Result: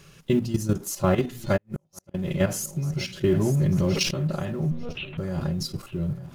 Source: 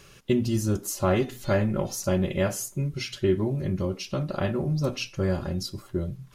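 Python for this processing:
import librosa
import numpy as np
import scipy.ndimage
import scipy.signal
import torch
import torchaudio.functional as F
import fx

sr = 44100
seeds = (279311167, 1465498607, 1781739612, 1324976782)

y = fx.law_mismatch(x, sr, coded='mu')
y = fx.level_steps(y, sr, step_db=11)
y = fx.lpc_monotone(y, sr, seeds[0], pitch_hz=240.0, order=10, at=(4.71, 5.18))
y = fx.peak_eq(y, sr, hz=160.0, db=12.0, octaves=0.29)
y = fx.echo_feedback(y, sr, ms=896, feedback_pct=38, wet_db=-17.0)
y = fx.gate_flip(y, sr, shuts_db=-20.0, range_db=-42, at=(1.56, 2.14), fade=0.02)
y = fx.env_flatten(y, sr, amount_pct=70, at=(3.28, 4.11))
y = y * 10.0 ** (2.0 / 20.0)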